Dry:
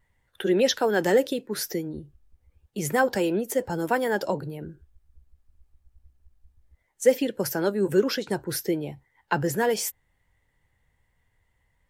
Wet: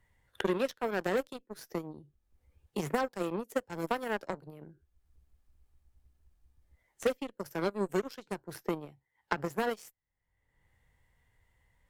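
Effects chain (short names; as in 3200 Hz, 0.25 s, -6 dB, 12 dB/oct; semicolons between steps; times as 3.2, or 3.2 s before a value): harmonic-percussive split percussive -4 dB; added harmonics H 3 -26 dB, 5 -16 dB, 7 -13 dB, 8 -44 dB, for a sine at -8.5 dBFS; three-band squash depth 100%; gain -6.5 dB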